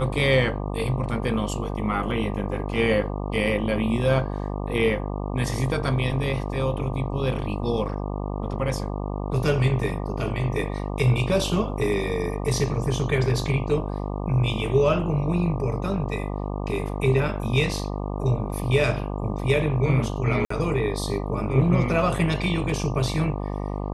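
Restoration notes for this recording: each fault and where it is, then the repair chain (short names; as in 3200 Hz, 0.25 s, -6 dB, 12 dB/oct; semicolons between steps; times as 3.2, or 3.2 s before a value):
buzz 50 Hz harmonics 24 -29 dBFS
20.45–20.5 gap 54 ms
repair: de-hum 50 Hz, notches 24; interpolate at 20.45, 54 ms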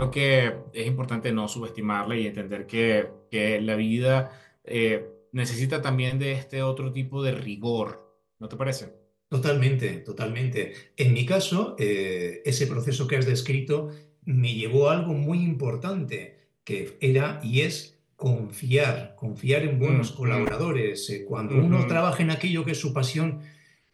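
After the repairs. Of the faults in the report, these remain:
none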